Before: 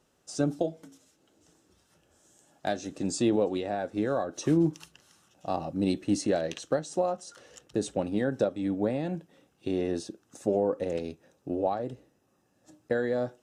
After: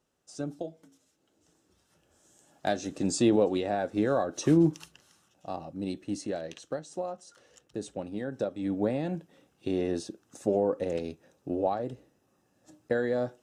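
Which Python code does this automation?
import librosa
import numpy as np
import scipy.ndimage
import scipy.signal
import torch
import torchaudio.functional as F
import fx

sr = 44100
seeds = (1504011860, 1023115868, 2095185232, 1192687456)

y = fx.gain(x, sr, db=fx.line((0.82, -8.0), (2.81, 2.0), (4.71, 2.0), (5.65, -7.0), (8.27, -7.0), (8.77, 0.0)))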